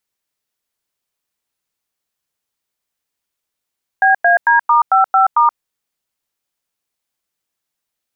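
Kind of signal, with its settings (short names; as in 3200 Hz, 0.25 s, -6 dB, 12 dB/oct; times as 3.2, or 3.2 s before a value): DTMF "BAD*55*", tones 0.127 s, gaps 97 ms, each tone -10.5 dBFS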